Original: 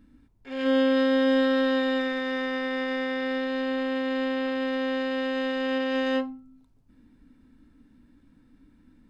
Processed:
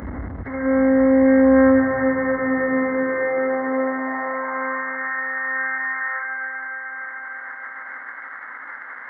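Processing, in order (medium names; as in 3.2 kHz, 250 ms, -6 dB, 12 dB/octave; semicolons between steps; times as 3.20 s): one-bit delta coder 16 kbps, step -27.5 dBFS; brick-wall FIR low-pass 2.2 kHz; tilt EQ +1.5 dB/octave; gate -35 dBFS, range -29 dB; high-pass sweep 66 Hz -> 1.5 kHz, 1.38–5.04 s; echo whose repeats swap between lows and highs 151 ms, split 1.2 kHz, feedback 82%, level -5.5 dB; upward compressor, threshold -28 dBFS; bass shelf 200 Hz +9.5 dB; trim +2.5 dB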